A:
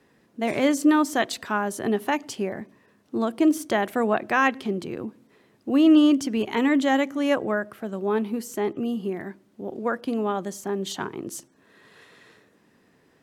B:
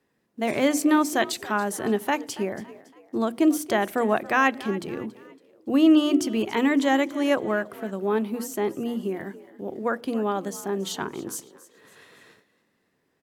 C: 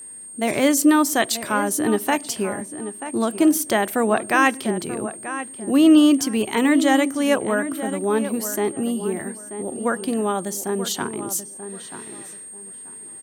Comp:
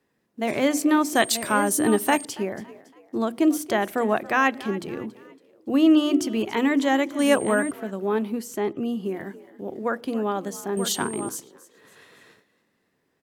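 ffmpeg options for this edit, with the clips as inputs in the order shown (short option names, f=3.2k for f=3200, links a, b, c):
-filter_complex "[2:a]asplit=3[a][b][c];[1:a]asplit=5[d][e][f][g][h];[d]atrim=end=1.152[i];[a]atrim=start=1.148:end=2.252[j];[e]atrim=start=2.248:end=7.192[k];[b]atrim=start=7.188:end=7.712[l];[f]atrim=start=7.708:end=8.322[m];[0:a]atrim=start=8.318:end=9.062[n];[g]atrim=start=9.058:end=10.772[o];[c]atrim=start=10.768:end=11.292[p];[h]atrim=start=11.288[q];[i][j]acrossfade=d=0.004:c1=hsin:c2=hsin[r];[r][k]acrossfade=d=0.004:c1=hsin:c2=hsin[s];[s][l]acrossfade=d=0.004:c1=hsin:c2=hsin[t];[t][m]acrossfade=d=0.004:c1=hsin:c2=hsin[u];[u][n]acrossfade=d=0.004:c1=hsin:c2=hsin[v];[v][o]acrossfade=d=0.004:c1=hsin:c2=hsin[w];[w][p]acrossfade=d=0.004:c1=hsin:c2=hsin[x];[x][q]acrossfade=d=0.004:c1=hsin:c2=hsin"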